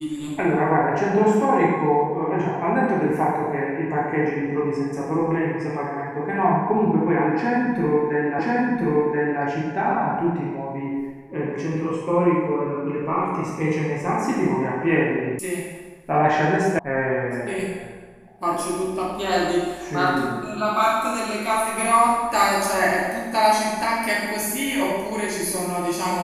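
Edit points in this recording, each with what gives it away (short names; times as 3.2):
8.39 repeat of the last 1.03 s
15.39 sound cut off
16.79 sound cut off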